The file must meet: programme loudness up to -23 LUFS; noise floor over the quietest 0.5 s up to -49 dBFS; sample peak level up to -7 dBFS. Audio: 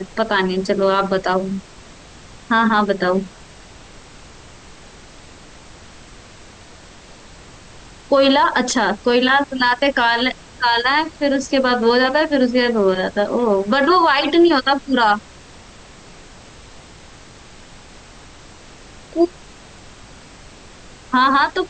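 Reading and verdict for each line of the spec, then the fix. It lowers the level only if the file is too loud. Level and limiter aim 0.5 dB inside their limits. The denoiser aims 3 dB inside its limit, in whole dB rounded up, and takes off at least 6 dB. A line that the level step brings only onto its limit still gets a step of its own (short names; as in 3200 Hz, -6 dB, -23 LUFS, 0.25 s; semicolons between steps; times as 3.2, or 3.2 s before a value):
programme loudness -16.5 LUFS: fail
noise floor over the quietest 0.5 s -42 dBFS: fail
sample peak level -5.0 dBFS: fail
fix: denoiser 6 dB, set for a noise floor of -42 dBFS; gain -7 dB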